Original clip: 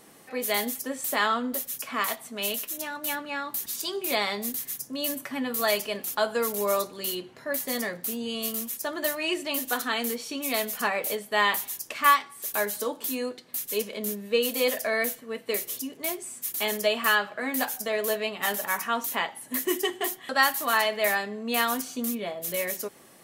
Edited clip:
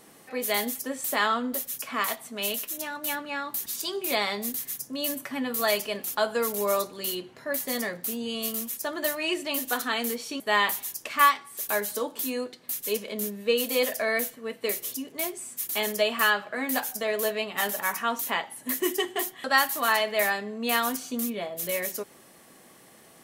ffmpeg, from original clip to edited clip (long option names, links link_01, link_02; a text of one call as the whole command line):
ffmpeg -i in.wav -filter_complex "[0:a]asplit=2[link_01][link_02];[link_01]atrim=end=10.402[link_03];[link_02]atrim=start=11.248[link_04];[link_03][link_04]acrossfade=duration=0.004:curve1=hsin:curve2=hsin" out.wav